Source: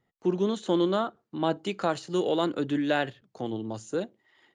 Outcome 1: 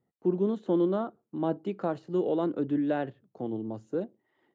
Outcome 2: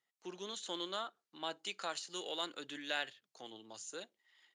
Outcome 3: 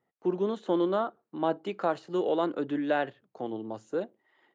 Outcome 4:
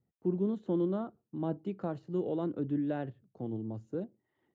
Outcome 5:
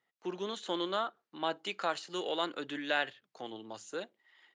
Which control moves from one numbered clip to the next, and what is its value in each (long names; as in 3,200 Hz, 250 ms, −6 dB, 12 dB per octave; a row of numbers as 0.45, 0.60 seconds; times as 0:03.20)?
resonant band-pass, frequency: 260, 6,900, 680, 100, 2,600 Hertz